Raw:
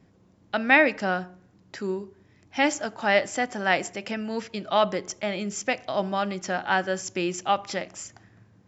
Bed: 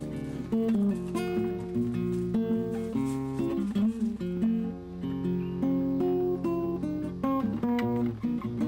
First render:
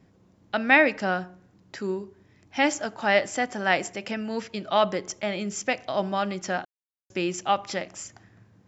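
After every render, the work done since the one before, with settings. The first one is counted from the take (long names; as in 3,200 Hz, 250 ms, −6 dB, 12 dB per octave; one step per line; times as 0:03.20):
0:06.65–0:07.10: silence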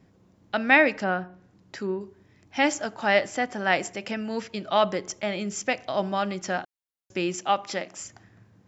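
0:00.98–0:02.01: treble cut that deepens with the level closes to 2,600 Hz, closed at −26.5 dBFS
0:03.27–0:03.73: high-frequency loss of the air 54 metres
0:07.35–0:08.00: high-pass filter 170 Hz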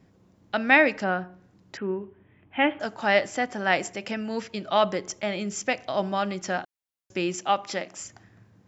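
0:01.77–0:02.80: Butterworth low-pass 3,300 Hz 72 dB per octave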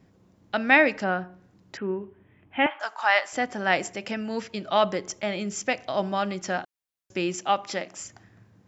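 0:02.66–0:03.33: high-pass with resonance 990 Hz, resonance Q 2.2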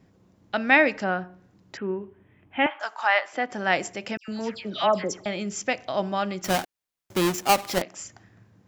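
0:03.07–0:03.52: three-way crossover with the lows and the highs turned down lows −15 dB, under 220 Hz, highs −14 dB, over 4,000 Hz
0:04.17–0:05.26: all-pass dispersion lows, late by 111 ms, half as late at 2,200 Hz
0:06.44–0:07.82: each half-wave held at its own peak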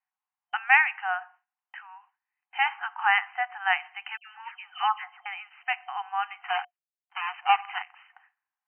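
brick-wall band-pass 720–3,100 Hz
noise gate with hold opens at −47 dBFS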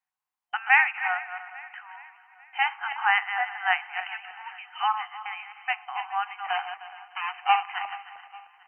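feedback delay that plays each chunk backwards 154 ms, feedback 46%, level −9 dB
repeating echo 422 ms, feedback 52%, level −19 dB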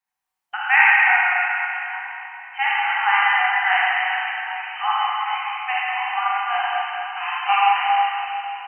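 double-tracking delay 16 ms −12.5 dB
four-comb reverb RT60 3 s, combs from 32 ms, DRR −7.5 dB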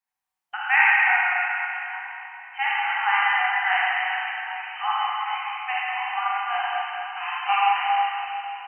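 level −3.5 dB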